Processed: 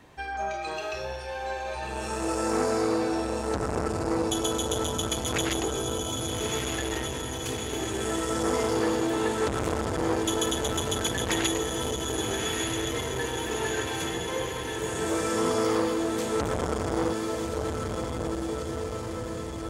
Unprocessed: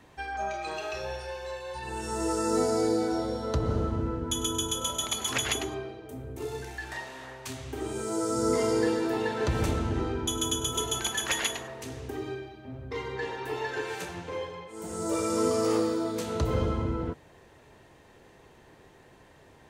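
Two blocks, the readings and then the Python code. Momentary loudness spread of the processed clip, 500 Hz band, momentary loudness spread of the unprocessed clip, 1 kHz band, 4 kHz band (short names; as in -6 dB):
7 LU, +2.5 dB, 12 LU, +3.5 dB, +2.5 dB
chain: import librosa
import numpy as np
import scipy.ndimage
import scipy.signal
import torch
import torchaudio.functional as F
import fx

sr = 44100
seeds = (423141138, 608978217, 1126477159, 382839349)

p1 = x + fx.echo_diffused(x, sr, ms=1276, feedback_pct=64, wet_db=-3.0, dry=0)
p2 = fx.transformer_sat(p1, sr, knee_hz=990.0)
y = p2 * 10.0 ** (2.0 / 20.0)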